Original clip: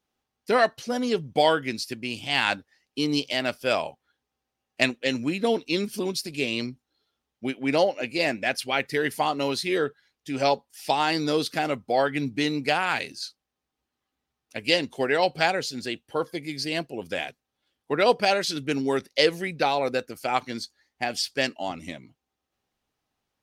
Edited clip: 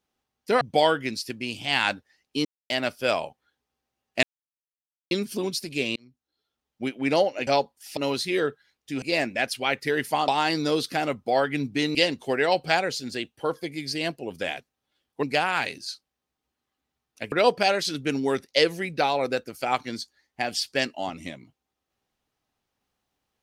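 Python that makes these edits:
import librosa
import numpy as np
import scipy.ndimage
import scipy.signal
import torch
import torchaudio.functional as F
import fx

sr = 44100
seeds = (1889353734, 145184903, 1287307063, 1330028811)

y = fx.edit(x, sr, fx.cut(start_s=0.61, length_s=0.62),
    fx.silence(start_s=3.07, length_s=0.25),
    fx.silence(start_s=4.85, length_s=0.88),
    fx.fade_in_span(start_s=6.58, length_s=0.9),
    fx.swap(start_s=8.09, length_s=1.26, other_s=10.4, other_length_s=0.5),
    fx.move(start_s=12.57, length_s=2.09, to_s=17.94), tone=tone)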